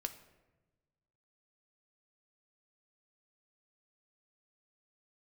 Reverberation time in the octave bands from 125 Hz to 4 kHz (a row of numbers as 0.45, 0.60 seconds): 1.9, 1.5, 1.3, 1.0, 0.95, 0.65 seconds